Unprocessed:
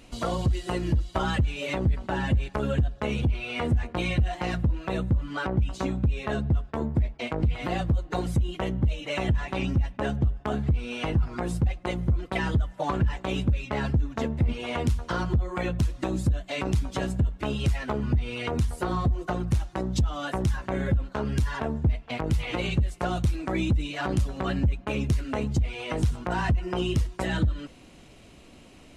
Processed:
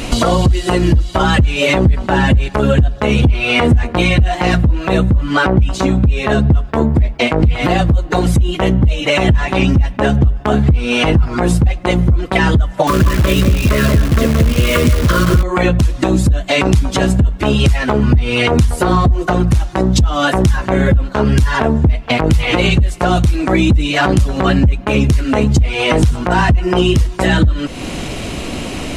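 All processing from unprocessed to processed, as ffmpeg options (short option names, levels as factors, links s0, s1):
-filter_complex "[0:a]asettb=1/sr,asplit=3[s0][s1][s2];[s0]atrim=end=12.874[s3];[s1]atrim=start=12.87:end=15.43,asetpts=PTS-STARTPTS,afade=t=in:d=0.004:c=qsin,afade=t=out:st=2.556:d=0.004:c=qsin,asuperstop=centerf=820:order=20:qfactor=2.6,asplit=2[s4][s5];[s5]adelay=175,lowpass=f=2200:p=1,volume=0.531,asplit=2[s6][s7];[s7]adelay=175,lowpass=f=2200:p=1,volume=0.18,asplit=2[s8][s9];[s9]adelay=175,lowpass=f=2200:p=1,volume=0.18[s10];[s4][s6][s8][s10]amix=inputs=4:normalize=0,atrim=end_sample=112896,acrusher=bits=7:dc=4:mix=0:aa=0.000001[s11];[s2]atrim=start=15.426[s12];[s3][s11]acrossfade=d=0.004:c1=hsin:c2=qsin[s13];[s13][s12]acrossfade=d=0.004:c1=qsin:c2=hsin,acompressor=threshold=0.00891:ratio=3,alimiter=level_in=28.2:limit=0.891:release=50:level=0:latency=1,volume=0.891"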